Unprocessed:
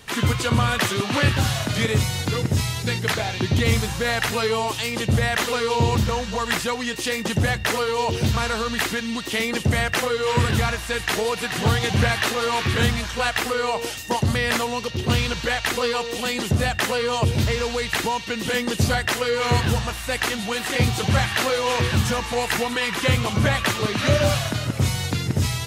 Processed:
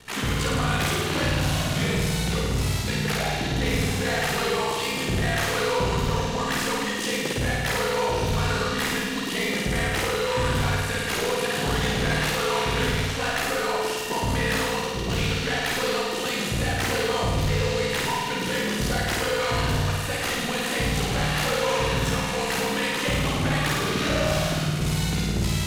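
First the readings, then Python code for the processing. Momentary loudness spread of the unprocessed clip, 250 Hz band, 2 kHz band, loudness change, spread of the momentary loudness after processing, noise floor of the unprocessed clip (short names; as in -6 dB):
4 LU, -2.0 dB, -2.5 dB, -2.5 dB, 2 LU, -31 dBFS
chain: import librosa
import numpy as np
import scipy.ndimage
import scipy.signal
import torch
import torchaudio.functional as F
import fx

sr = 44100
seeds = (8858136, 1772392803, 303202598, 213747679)

y = x * np.sin(2.0 * np.pi * 32.0 * np.arange(len(x)) / sr)
y = 10.0 ** (-22.0 / 20.0) * np.tanh(y / 10.0 ** (-22.0 / 20.0))
y = fx.room_flutter(y, sr, wall_m=9.1, rt60_s=1.5)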